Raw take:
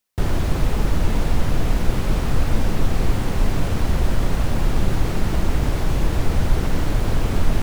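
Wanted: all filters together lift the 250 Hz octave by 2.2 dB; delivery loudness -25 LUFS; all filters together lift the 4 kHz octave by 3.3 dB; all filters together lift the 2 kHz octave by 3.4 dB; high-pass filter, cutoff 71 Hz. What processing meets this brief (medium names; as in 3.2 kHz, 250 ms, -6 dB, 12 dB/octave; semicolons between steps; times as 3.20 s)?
high-pass 71 Hz; peaking EQ 250 Hz +3 dB; peaking EQ 2 kHz +3.5 dB; peaking EQ 4 kHz +3 dB; trim -1 dB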